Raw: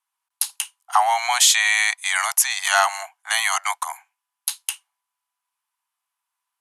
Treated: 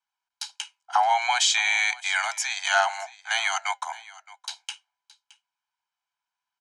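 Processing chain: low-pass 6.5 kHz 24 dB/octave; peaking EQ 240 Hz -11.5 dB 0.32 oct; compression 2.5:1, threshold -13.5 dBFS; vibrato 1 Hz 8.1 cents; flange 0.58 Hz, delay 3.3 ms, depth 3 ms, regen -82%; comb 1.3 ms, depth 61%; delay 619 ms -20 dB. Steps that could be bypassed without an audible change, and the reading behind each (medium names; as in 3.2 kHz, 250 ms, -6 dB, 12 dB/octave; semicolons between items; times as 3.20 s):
peaking EQ 240 Hz: input has nothing below 570 Hz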